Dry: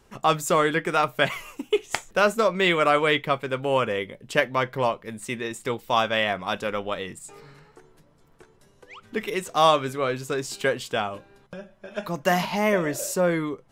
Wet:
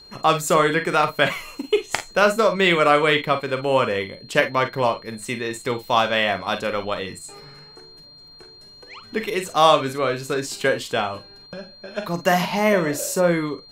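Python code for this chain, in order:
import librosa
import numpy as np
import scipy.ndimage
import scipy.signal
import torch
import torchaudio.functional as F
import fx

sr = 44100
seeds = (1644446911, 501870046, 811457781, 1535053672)

y = fx.room_early_taps(x, sr, ms=(41, 52), db=(-11.5, -12.5))
y = y + 10.0 ** (-47.0 / 20.0) * np.sin(2.0 * np.pi * 4200.0 * np.arange(len(y)) / sr)
y = F.gain(torch.from_numpy(y), 3.0).numpy()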